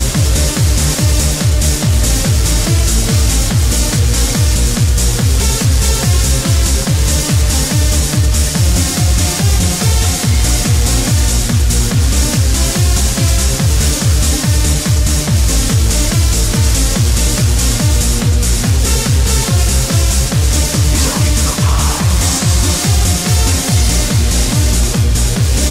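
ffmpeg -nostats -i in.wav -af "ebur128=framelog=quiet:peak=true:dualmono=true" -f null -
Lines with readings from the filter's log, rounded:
Integrated loudness:
  I:          -9.3 LUFS
  Threshold: -19.3 LUFS
Loudness range:
  LRA:         0.2 LU
  Threshold: -29.3 LUFS
  LRA low:    -9.4 LUFS
  LRA high:   -9.2 LUFS
True peak:
  Peak:       -1.5 dBFS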